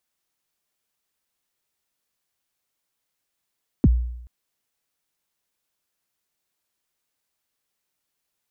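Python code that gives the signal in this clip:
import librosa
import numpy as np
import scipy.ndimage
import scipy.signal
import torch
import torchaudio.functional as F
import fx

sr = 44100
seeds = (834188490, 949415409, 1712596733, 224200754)

y = fx.drum_kick(sr, seeds[0], length_s=0.43, level_db=-9.5, start_hz=340.0, end_hz=60.0, sweep_ms=36.0, decay_s=0.81, click=False)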